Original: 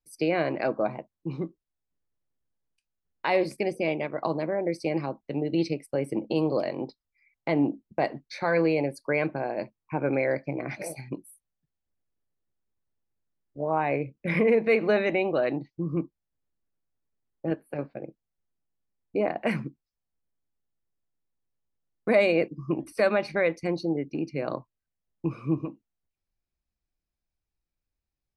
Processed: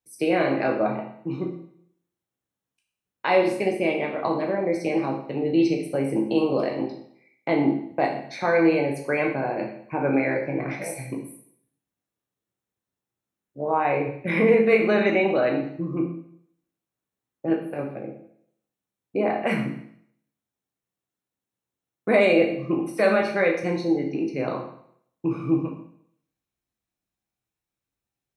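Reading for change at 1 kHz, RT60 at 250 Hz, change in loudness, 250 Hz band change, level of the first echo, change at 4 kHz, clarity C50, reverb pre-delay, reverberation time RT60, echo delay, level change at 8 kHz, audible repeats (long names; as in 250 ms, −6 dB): +5.0 dB, 0.65 s, +4.0 dB, +5.0 dB, no echo audible, +3.5 dB, 6.0 dB, 10 ms, 0.65 s, no echo audible, can't be measured, no echo audible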